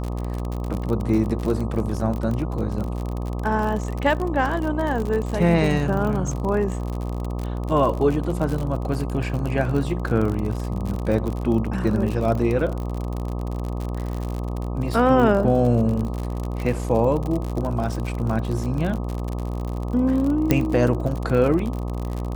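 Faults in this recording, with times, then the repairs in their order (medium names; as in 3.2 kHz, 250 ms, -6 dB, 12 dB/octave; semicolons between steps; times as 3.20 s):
buzz 60 Hz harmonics 21 -27 dBFS
crackle 53 per s -26 dBFS
20.51 s: pop -4 dBFS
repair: de-click; de-hum 60 Hz, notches 21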